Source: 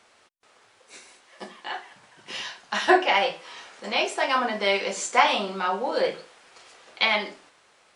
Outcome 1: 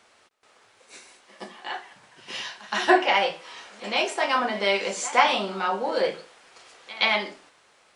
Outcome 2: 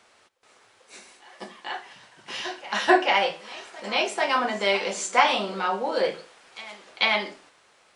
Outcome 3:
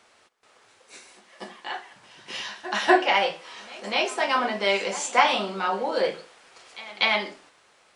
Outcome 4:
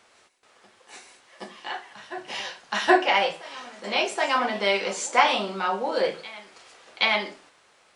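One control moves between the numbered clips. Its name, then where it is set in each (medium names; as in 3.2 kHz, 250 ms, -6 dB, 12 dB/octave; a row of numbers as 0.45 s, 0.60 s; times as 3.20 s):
reverse echo, time: 121 ms, 441 ms, 244 ms, 774 ms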